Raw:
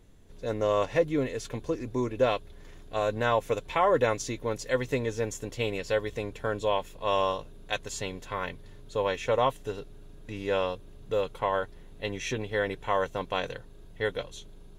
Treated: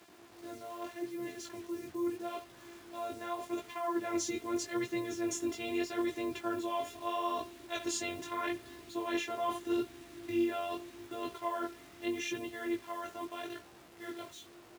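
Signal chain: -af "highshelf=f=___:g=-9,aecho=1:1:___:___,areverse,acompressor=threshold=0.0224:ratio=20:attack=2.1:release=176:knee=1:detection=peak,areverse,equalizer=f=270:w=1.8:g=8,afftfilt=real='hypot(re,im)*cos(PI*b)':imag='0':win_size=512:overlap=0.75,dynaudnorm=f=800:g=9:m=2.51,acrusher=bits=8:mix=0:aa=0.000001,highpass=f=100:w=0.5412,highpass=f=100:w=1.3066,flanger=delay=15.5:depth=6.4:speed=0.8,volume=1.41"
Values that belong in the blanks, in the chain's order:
8600, 74, 0.075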